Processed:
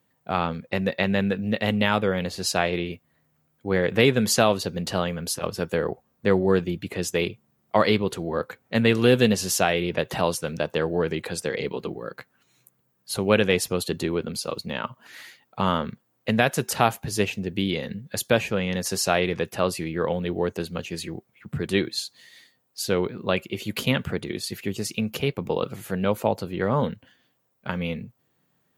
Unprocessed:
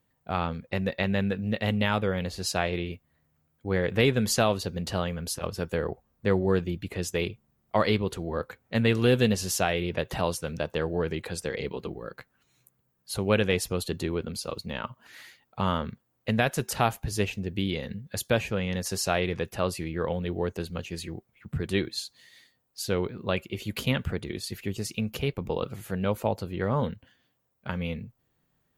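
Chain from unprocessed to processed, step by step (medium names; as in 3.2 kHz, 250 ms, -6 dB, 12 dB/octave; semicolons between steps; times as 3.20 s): high-pass 130 Hz 12 dB/octave; trim +4.5 dB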